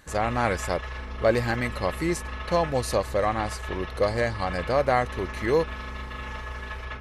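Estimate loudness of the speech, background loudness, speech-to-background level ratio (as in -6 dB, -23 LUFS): -27.0 LUFS, -36.0 LUFS, 9.0 dB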